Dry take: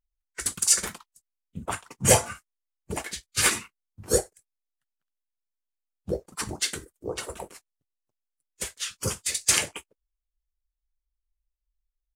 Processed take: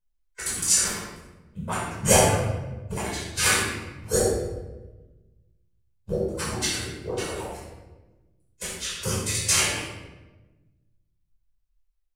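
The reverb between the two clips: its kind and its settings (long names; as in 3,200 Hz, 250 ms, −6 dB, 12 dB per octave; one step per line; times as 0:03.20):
rectangular room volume 640 cubic metres, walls mixed, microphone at 5.1 metres
level −7.5 dB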